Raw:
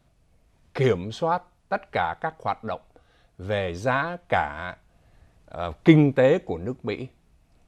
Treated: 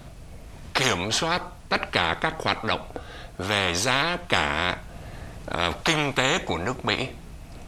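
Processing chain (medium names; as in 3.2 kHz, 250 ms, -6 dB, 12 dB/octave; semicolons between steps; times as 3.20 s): spectrum-flattening compressor 4:1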